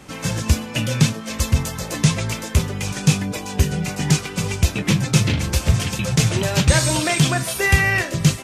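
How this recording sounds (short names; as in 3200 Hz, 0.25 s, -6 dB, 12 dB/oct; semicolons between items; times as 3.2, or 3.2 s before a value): noise floor -33 dBFS; spectral tilt -4.5 dB/oct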